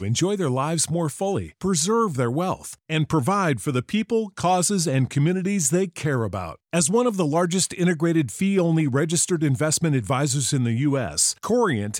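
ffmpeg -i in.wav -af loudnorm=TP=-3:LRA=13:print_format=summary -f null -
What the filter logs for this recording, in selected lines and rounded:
Input Integrated:    -22.1 LUFS
Input True Peak:      -6.9 dBTP
Input LRA:             1.9 LU
Input Threshold:     -32.1 LUFS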